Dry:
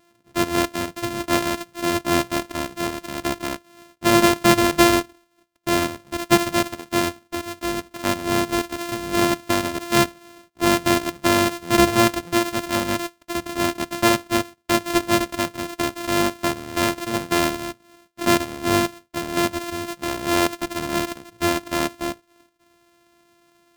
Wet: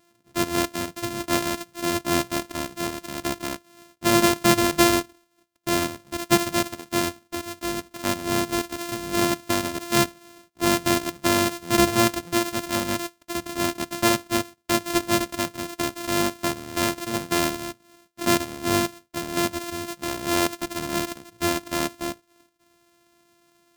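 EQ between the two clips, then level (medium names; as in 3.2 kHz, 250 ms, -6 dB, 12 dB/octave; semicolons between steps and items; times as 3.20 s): tone controls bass +5 dB, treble +4 dB; bass shelf 120 Hz -7 dB; -3.5 dB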